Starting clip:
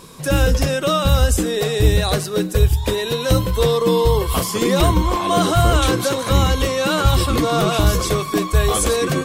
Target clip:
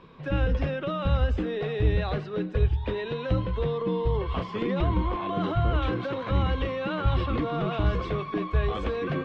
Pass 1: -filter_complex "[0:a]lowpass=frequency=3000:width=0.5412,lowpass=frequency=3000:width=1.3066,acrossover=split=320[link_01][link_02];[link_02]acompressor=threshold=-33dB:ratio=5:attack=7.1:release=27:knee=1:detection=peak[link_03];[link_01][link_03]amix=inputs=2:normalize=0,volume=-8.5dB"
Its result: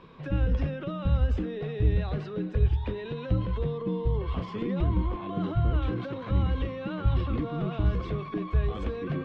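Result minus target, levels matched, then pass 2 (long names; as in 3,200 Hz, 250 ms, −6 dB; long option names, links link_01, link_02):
downward compressor: peak gain reduction +8 dB
-filter_complex "[0:a]lowpass=frequency=3000:width=0.5412,lowpass=frequency=3000:width=1.3066,acrossover=split=320[link_01][link_02];[link_02]acompressor=threshold=-23dB:ratio=5:attack=7.1:release=27:knee=1:detection=peak[link_03];[link_01][link_03]amix=inputs=2:normalize=0,volume=-8.5dB"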